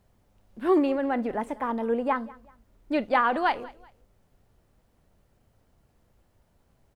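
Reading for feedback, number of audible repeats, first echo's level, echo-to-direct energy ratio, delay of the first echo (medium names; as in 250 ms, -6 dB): 33%, 2, -21.5 dB, -21.0 dB, 190 ms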